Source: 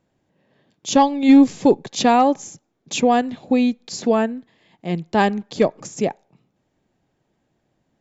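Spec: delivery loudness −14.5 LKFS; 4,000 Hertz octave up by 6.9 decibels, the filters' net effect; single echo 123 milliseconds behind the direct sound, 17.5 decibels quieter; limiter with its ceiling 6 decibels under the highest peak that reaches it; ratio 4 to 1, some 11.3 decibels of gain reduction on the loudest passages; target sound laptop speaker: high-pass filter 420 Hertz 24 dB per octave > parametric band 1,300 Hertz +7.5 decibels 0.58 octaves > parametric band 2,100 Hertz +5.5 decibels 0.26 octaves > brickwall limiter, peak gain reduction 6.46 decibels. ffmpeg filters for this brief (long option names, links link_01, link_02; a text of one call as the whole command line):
ffmpeg -i in.wav -af "equalizer=frequency=4000:width_type=o:gain=8,acompressor=threshold=-21dB:ratio=4,alimiter=limit=-16.5dB:level=0:latency=1,highpass=frequency=420:width=0.5412,highpass=frequency=420:width=1.3066,equalizer=frequency=1300:width_type=o:width=0.58:gain=7.5,equalizer=frequency=2100:width_type=o:width=0.26:gain=5.5,aecho=1:1:123:0.133,volume=18dB,alimiter=limit=-3.5dB:level=0:latency=1" out.wav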